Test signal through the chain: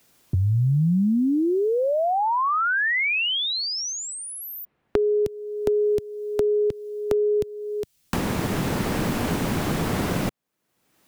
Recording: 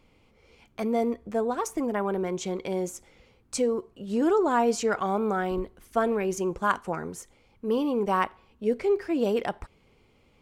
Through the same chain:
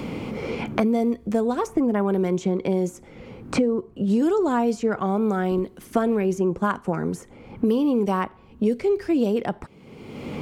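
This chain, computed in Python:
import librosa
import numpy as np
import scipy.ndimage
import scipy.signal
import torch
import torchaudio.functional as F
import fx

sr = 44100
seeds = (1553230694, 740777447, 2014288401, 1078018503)

y = fx.rider(x, sr, range_db=4, speed_s=2.0)
y = fx.peak_eq(y, sr, hz=180.0, db=10.0, octaves=2.6)
y = fx.band_squash(y, sr, depth_pct=100)
y = y * 10.0 ** (-2.5 / 20.0)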